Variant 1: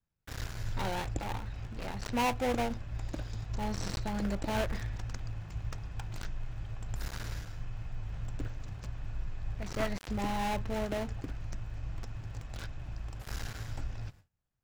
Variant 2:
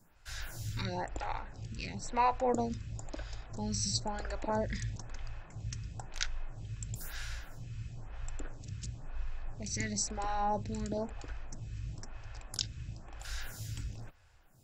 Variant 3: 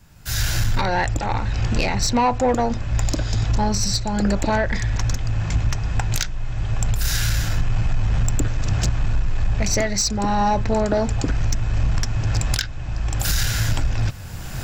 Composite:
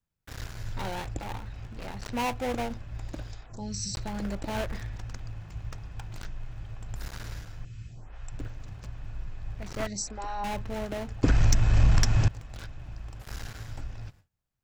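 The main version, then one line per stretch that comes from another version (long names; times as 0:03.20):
1
0:03.33–0:03.95: punch in from 2
0:07.65–0:08.32: punch in from 2
0:09.87–0:10.44: punch in from 2
0:11.23–0:12.28: punch in from 3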